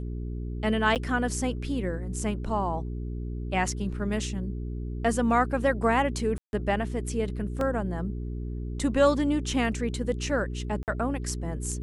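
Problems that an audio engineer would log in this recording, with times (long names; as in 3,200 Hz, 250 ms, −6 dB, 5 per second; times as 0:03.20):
mains hum 60 Hz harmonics 7 −33 dBFS
0:00.95–0:00.96: drop-out 8.6 ms
0:06.38–0:06.53: drop-out 151 ms
0:07.61: drop-out 2.1 ms
0:10.83–0:10.88: drop-out 48 ms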